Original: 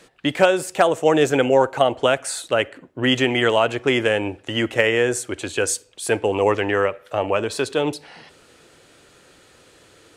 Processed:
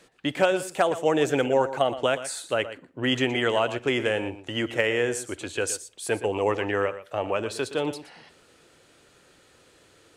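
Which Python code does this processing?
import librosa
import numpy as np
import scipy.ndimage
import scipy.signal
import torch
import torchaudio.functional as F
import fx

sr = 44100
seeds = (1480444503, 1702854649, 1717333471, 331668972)

y = x + 10.0 ** (-13.5 / 20.0) * np.pad(x, (int(119 * sr / 1000.0), 0))[:len(x)]
y = F.gain(torch.from_numpy(y), -6.0).numpy()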